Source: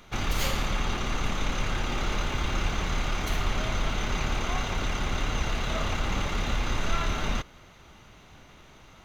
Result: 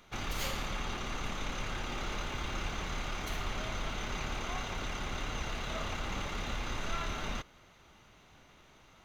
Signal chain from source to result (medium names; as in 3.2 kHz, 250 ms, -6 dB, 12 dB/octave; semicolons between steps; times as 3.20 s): bass shelf 210 Hz -4 dB; trim -6.5 dB